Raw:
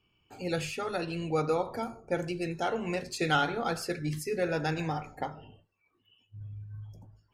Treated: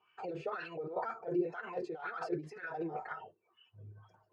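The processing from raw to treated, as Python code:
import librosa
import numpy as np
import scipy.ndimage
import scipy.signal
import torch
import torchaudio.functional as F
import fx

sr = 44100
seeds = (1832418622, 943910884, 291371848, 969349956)

y = scipy.signal.sosfilt(scipy.signal.butter(2, 7200.0, 'lowpass', fs=sr, output='sos'), x)
y = fx.peak_eq(y, sr, hz=270.0, db=-11.5, octaves=0.23)
y = fx.cheby_harmonics(y, sr, harmonics=(2, 3, 6), levels_db=(-20, -27, -39), full_scale_db=-14.0)
y = fx.over_compress(y, sr, threshold_db=-40.0, ratio=-1.0)
y = fx.low_shelf(y, sr, hz=170.0, db=-5.0)
y = fx.notch_comb(y, sr, f0_hz=280.0)
y = fx.stretch_vocoder(y, sr, factor=0.59)
y = fx.wah_lfo(y, sr, hz=2.0, low_hz=340.0, high_hz=1600.0, q=4.0)
y = y * 10.0 ** (13.5 / 20.0)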